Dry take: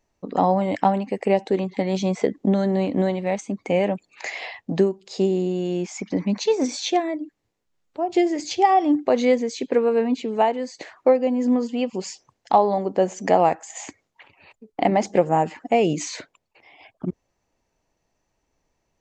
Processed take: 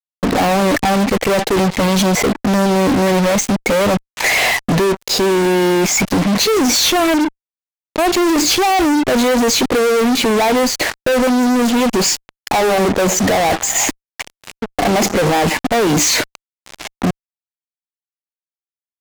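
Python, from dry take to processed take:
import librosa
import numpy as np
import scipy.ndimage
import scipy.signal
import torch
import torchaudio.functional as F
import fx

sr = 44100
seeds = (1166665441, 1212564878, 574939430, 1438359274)

p1 = fx.over_compress(x, sr, threshold_db=-26.0, ratio=-0.5)
p2 = x + (p1 * 10.0 ** (2.5 / 20.0))
p3 = fx.fuzz(p2, sr, gain_db=36.0, gate_db=-32.0)
y = p3 * 10.0 ** (1.0 / 20.0)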